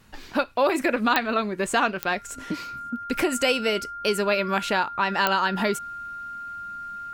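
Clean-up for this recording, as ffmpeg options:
-af "adeclick=t=4,bandreject=f=1.4k:w=30"

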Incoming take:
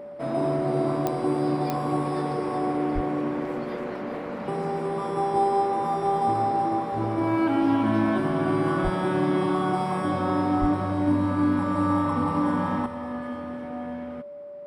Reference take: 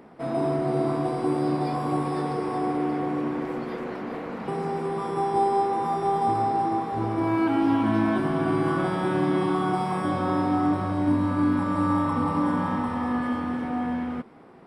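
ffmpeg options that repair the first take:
-filter_complex "[0:a]adeclick=t=4,bandreject=f=580:w=30,asplit=3[a][b][c];[a]afade=t=out:st=2.94:d=0.02[d];[b]highpass=f=140:w=0.5412,highpass=f=140:w=1.3066,afade=t=in:st=2.94:d=0.02,afade=t=out:st=3.06:d=0.02[e];[c]afade=t=in:st=3.06:d=0.02[f];[d][e][f]amix=inputs=3:normalize=0,asplit=3[g][h][i];[g]afade=t=out:st=8.83:d=0.02[j];[h]highpass=f=140:w=0.5412,highpass=f=140:w=1.3066,afade=t=in:st=8.83:d=0.02,afade=t=out:st=8.95:d=0.02[k];[i]afade=t=in:st=8.95:d=0.02[l];[j][k][l]amix=inputs=3:normalize=0,asplit=3[m][n][o];[m]afade=t=out:st=10.6:d=0.02[p];[n]highpass=f=140:w=0.5412,highpass=f=140:w=1.3066,afade=t=in:st=10.6:d=0.02,afade=t=out:st=10.72:d=0.02[q];[o]afade=t=in:st=10.72:d=0.02[r];[p][q][r]amix=inputs=3:normalize=0,asetnsamples=n=441:p=0,asendcmd='12.86 volume volume 7dB',volume=0dB"

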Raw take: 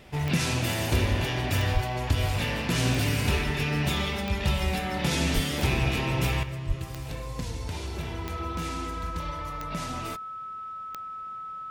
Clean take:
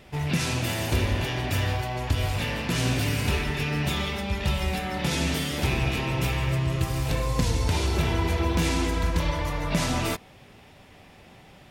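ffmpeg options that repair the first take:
-filter_complex "[0:a]adeclick=t=4,bandreject=f=1.3k:w=30,asplit=3[a][b][c];[a]afade=t=out:st=1.73:d=0.02[d];[b]highpass=f=140:w=0.5412,highpass=f=140:w=1.3066,afade=t=in:st=1.73:d=0.02,afade=t=out:st=1.85:d=0.02[e];[c]afade=t=in:st=1.85:d=0.02[f];[d][e][f]amix=inputs=3:normalize=0,asplit=3[g][h][i];[g]afade=t=out:st=5.34:d=0.02[j];[h]highpass=f=140:w=0.5412,highpass=f=140:w=1.3066,afade=t=in:st=5.34:d=0.02,afade=t=out:st=5.46:d=0.02[k];[i]afade=t=in:st=5.46:d=0.02[l];[j][k][l]amix=inputs=3:normalize=0,asplit=3[m][n][o];[m]afade=t=out:st=6.67:d=0.02[p];[n]highpass=f=140:w=0.5412,highpass=f=140:w=1.3066,afade=t=in:st=6.67:d=0.02,afade=t=out:st=6.79:d=0.02[q];[o]afade=t=in:st=6.79:d=0.02[r];[p][q][r]amix=inputs=3:normalize=0,asetnsamples=n=441:p=0,asendcmd='6.43 volume volume 9.5dB',volume=0dB"

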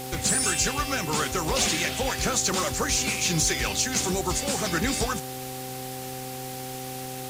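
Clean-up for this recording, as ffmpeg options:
-af "adeclick=t=4,bandreject=f=129.5:t=h:w=4,bandreject=f=259:t=h:w=4,bandreject=f=388.5:t=h:w=4,bandreject=f=518:t=h:w=4,bandreject=f=770:w=30,afwtdn=0.011"

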